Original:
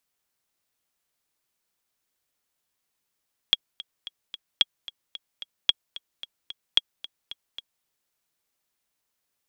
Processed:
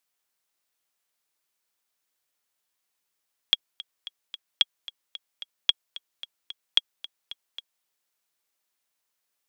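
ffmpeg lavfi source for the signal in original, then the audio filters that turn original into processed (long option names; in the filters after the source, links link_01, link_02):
-f lavfi -i "aevalsrc='pow(10,(-4.5-18.5*gte(mod(t,4*60/222),60/222))/20)*sin(2*PI*3310*mod(t,60/222))*exp(-6.91*mod(t,60/222)/0.03)':duration=4.32:sample_rate=44100"
-af "lowshelf=frequency=290:gain=-10"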